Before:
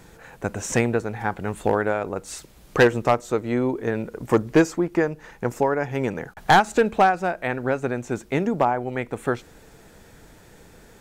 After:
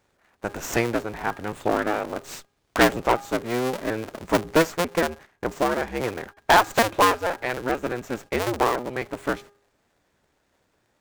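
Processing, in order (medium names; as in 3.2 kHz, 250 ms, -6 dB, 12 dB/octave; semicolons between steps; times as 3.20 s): cycle switcher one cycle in 2, inverted; gate -38 dBFS, range -17 dB; bass shelf 230 Hz -8 dB; de-hum 406.5 Hz, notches 4; sliding maximum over 3 samples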